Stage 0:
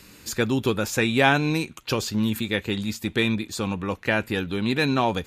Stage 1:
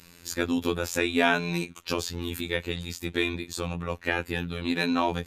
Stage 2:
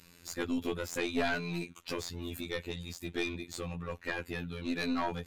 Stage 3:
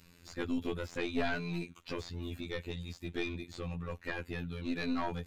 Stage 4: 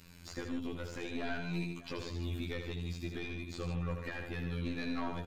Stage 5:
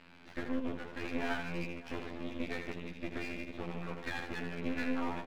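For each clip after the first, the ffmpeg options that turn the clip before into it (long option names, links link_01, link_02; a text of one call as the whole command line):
ffmpeg -i in.wav -af "afftfilt=real='hypot(re,im)*cos(PI*b)':imag='0':win_size=2048:overlap=0.75" out.wav
ffmpeg -i in.wav -af "aeval=exprs='(tanh(7.94*val(0)+0.55)-tanh(0.55))/7.94':channel_layout=same,volume=-3dB" out.wav
ffmpeg -i in.wav -filter_complex "[0:a]acrossover=split=5400[link_01][link_02];[link_02]acompressor=threshold=-58dB:ratio=4:attack=1:release=60[link_03];[link_01][link_03]amix=inputs=2:normalize=0,lowshelf=frequency=160:gain=6.5,volume=-3dB" out.wav
ffmpeg -i in.wav -filter_complex "[0:a]alimiter=level_in=8.5dB:limit=-24dB:level=0:latency=1:release=444,volume=-8.5dB,asplit=2[link_01][link_02];[link_02]aecho=0:1:80|150|595:0.473|0.355|0.126[link_03];[link_01][link_03]amix=inputs=2:normalize=0,volume=3dB" out.wav
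ffmpeg -i in.wav -af "highpass=230,equalizer=frequency=230:width_type=q:width=4:gain=7,equalizer=frequency=530:width_type=q:width=4:gain=-5,equalizer=frequency=860:width_type=q:width=4:gain=5,equalizer=frequency=1200:width_type=q:width=4:gain=-7,equalizer=frequency=1700:width_type=q:width=4:gain=3,lowpass=frequency=2700:width=0.5412,lowpass=frequency=2700:width=1.3066,aeval=exprs='max(val(0),0)':channel_layout=same,volume=7dB" out.wav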